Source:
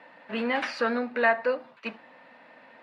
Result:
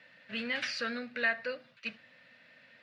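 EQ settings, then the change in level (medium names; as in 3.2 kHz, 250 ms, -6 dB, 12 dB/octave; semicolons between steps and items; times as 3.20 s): FFT filter 120 Hz 0 dB, 170 Hz -7 dB, 240 Hz -13 dB, 340 Hz -19 dB, 580 Hz -14 dB, 890 Hz -26 dB, 1.5 kHz -9 dB, 3.3 kHz -3 dB, 5.6 kHz 0 dB, 10 kHz -7 dB; +3.5 dB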